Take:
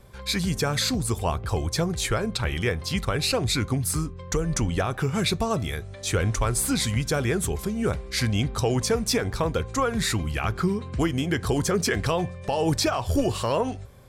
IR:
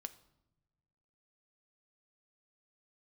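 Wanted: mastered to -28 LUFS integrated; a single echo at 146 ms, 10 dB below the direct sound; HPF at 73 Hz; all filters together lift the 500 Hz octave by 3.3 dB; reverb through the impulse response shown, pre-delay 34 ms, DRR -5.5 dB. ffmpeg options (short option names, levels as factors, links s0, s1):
-filter_complex "[0:a]highpass=73,equalizer=f=500:t=o:g=4,aecho=1:1:146:0.316,asplit=2[s0][s1];[1:a]atrim=start_sample=2205,adelay=34[s2];[s1][s2]afir=irnorm=-1:irlink=0,volume=2.99[s3];[s0][s3]amix=inputs=2:normalize=0,volume=0.299"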